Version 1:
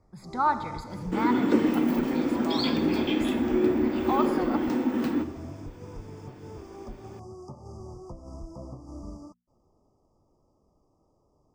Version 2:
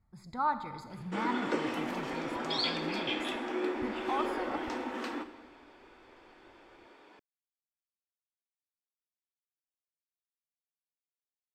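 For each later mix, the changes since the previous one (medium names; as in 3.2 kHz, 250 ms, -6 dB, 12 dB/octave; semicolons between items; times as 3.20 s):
speech -6.0 dB; first sound: muted; second sound: add band-pass 610–7900 Hz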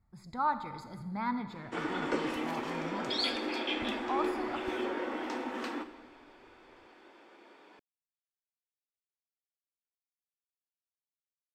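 background: entry +0.60 s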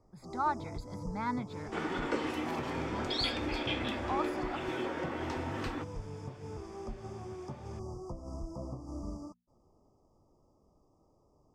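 first sound: unmuted; reverb: off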